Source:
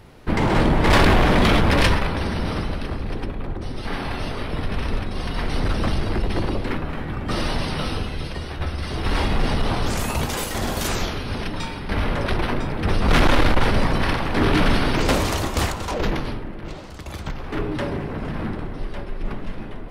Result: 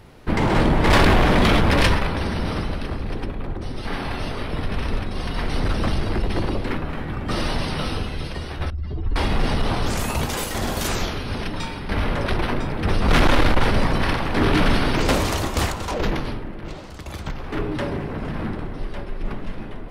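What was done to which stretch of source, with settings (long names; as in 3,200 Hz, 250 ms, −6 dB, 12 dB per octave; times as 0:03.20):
0:08.70–0:09.16: expanding power law on the bin magnitudes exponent 2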